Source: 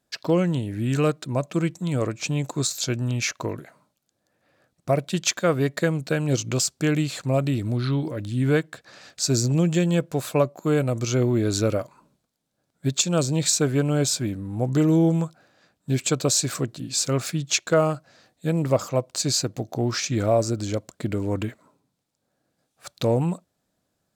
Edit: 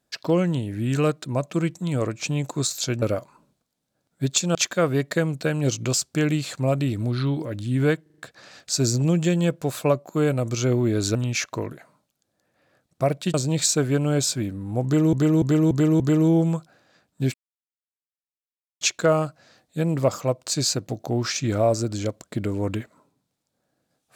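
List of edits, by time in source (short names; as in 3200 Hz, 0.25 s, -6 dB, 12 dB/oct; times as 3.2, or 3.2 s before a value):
3.02–5.21 swap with 11.65–13.18
8.68 stutter 0.04 s, 5 plays
14.68–14.97 loop, 5 plays
16.02–17.49 mute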